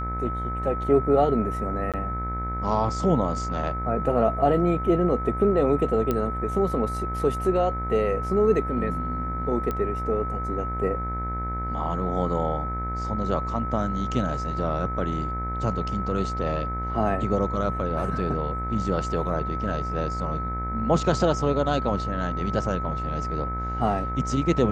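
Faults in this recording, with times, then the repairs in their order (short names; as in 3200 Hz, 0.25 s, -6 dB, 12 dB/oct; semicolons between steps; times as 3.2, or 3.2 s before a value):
buzz 60 Hz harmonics 39 -31 dBFS
tone 1300 Hz -30 dBFS
1.92–1.94 gap 17 ms
6.11 pop -12 dBFS
9.71 pop -16 dBFS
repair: de-click; de-hum 60 Hz, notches 39; notch 1300 Hz, Q 30; interpolate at 1.92, 17 ms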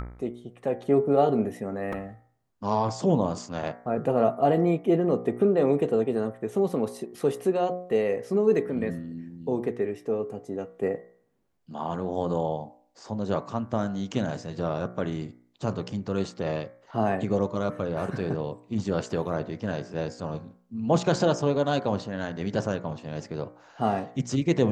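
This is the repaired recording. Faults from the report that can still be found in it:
none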